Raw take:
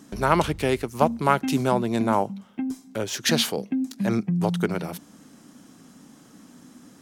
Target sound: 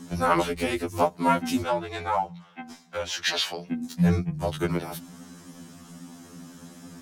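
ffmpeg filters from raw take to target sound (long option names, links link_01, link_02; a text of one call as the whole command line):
ffmpeg -i in.wav -filter_complex "[0:a]asettb=1/sr,asplit=3[link_01][link_02][link_03];[link_01]atrim=end=1.624[link_04];[link_02]atrim=start=1.62:end=3.68,asetpts=PTS-STARTPTS,afade=type=in:duration=0.004:curve=qsin,afade=type=out:start_time=2.056:duration=0.004:curve=qsin,acrossover=split=590 5600:gain=0.178 1 0.2[link_05][link_06][link_07];[link_05][link_06][link_07]amix=inputs=3:normalize=0[link_08];[link_03]atrim=start=3.676[link_09];[link_04][link_08]acrossfade=duration=0.004:curve1=hsin:curve2=qsin[link_10];[link_10][link_09]acrossfade=duration=0.004:curve1=qsin:curve2=hsin,asplit=2[link_11][link_12];[link_12]acompressor=threshold=-35dB:ratio=12,volume=2dB[link_13];[link_11][link_13]amix=inputs=2:normalize=0,afreqshift=-23,afftfilt=real='re*2*eq(mod(b,4),0)':imag='im*2*eq(mod(b,4),0)':win_size=2048:overlap=0.75" out.wav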